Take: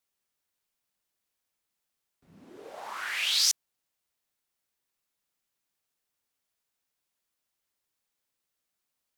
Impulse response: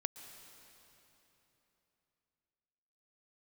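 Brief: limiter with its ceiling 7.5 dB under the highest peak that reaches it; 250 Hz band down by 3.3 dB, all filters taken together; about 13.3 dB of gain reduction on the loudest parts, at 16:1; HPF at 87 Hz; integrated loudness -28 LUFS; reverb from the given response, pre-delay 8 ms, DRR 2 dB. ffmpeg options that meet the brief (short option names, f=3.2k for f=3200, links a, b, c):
-filter_complex "[0:a]highpass=87,equalizer=f=250:t=o:g=-4.5,acompressor=threshold=-33dB:ratio=16,alimiter=level_in=6.5dB:limit=-24dB:level=0:latency=1,volume=-6.5dB,asplit=2[a][b];[1:a]atrim=start_sample=2205,adelay=8[c];[b][c]afir=irnorm=-1:irlink=0,volume=-1.5dB[d];[a][d]amix=inputs=2:normalize=0,volume=11dB"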